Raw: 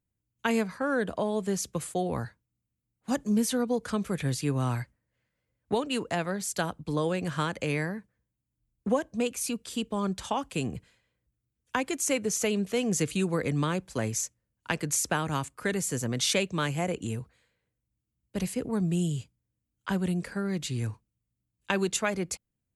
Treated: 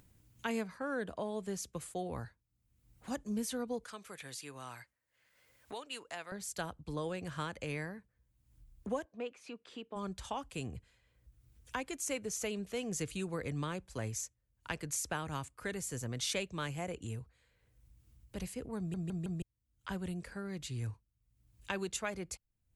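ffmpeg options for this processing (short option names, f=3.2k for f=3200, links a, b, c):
-filter_complex "[0:a]asettb=1/sr,asplit=3[a][b][c];[a]atrim=end=3.844[d];[b]atrim=start=3.84:end=6.32,asetpts=PTS-STARTPTS,afade=t=in:d=0.004:c=qsin,afade=t=out:st=2.476:d=0.004:c=qsin,highpass=f=1.1k:p=1[e];[c]atrim=start=6.316[f];[d][e]acrossfade=d=0.004:c1=hsin:c2=qsin[g];[g][f]acrossfade=d=0.004:c1=qsin:c2=hsin,asplit=3[h][i][j];[h]afade=t=out:st=9.04:d=0.02[k];[i]highpass=300,lowpass=2.4k,afade=t=in:st=9.04:d=0.02,afade=t=out:st=9.95:d=0.02[l];[j]afade=t=in:st=9.95:d=0.02[m];[k][l][m]amix=inputs=3:normalize=0,asplit=5[n][o][p][q][r];[n]atrim=end=18.942[s];[o]atrim=start=18.778:end=18.942[t];[p]atrim=start=18.778:end=18.942[u];[q]atrim=start=18.778:end=18.942[v];[r]atrim=start=19.418[w];[s][t]acrossfade=d=0.004:c1=hsin:c2=hsin[x];[x][u]acrossfade=d=0.004:c1=hsin:c2=hsin[y];[y][v]acrossfade=d=0.004:c1=hsin:c2=hsin[z];[z][w]acrossfade=d=0.004:c1=hsin:c2=hsin,asubboost=boost=4:cutoff=84,acompressor=mode=upward:threshold=-34dB:ratio=2.5,volume=-9dB"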